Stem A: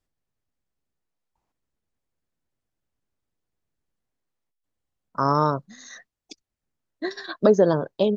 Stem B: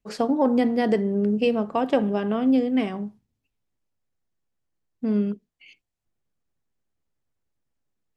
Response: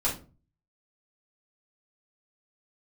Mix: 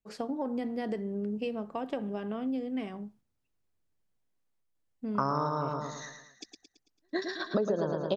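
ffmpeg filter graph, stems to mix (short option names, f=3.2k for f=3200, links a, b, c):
-filter_complex "[0:a]volume=1dB,asplit=2[a][b];[b]volume=-4dB[c];[1:a]acompressor=threshold=-19dB:ratio=6,volume=-10dB,asplit=2[d][e];[e]apad=whole_len=360018[f];[a][f]sidechaingate=range=-49dB:threshold=-57dB:ratio=16:detection=peak[g];[c]aecho=0:1:111|222|333|444|555|666|777:1|0.47|0.221|0.104|0.0488|0.0229|0.0108[h];[g][d][h]amix=inputs=3:normalize=0,acompressor=threshold=-25dB:ratio=10"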